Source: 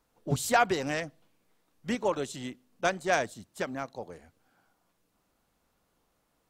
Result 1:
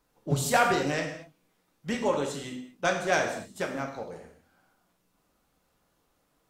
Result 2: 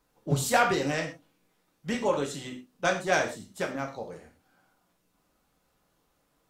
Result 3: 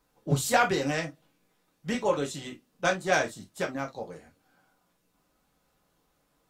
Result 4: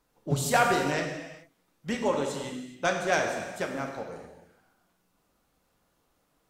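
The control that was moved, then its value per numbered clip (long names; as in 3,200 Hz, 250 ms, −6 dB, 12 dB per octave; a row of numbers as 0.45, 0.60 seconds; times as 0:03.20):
reverb whose tail is shaped and stops, gate: 260, 150, 80, 450 milliseconds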